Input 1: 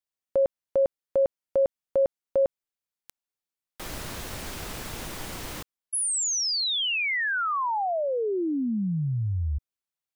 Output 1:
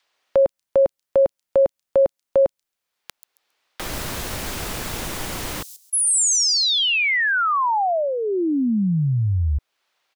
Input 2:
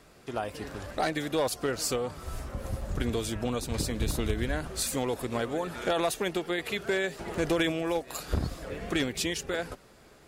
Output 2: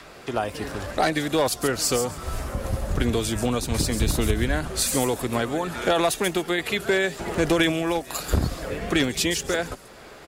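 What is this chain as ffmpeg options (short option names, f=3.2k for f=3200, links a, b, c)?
-filter_complex "[0:a]adynamicequalizer=threshold=0.00891:dfrequency=490:dqfactor=2.7:tfrequency=490:tqfactor=2.7:attack=5:release=100:ratio=0.375:range=3.5:mode=cutabove:tftype=bell,acrossover=split=380|5000[a][b][c];[b]acompressor=mode=upward:threshold=-36dB:ratio=1.5:attack=19:release=362:knee=2.83:detection=peak[d];[c]aecho=1:1:136|272|408:0.631|0.133|0.0278[e];[a][d][e]amix=inputs=3:normalize=0,volume=7dB"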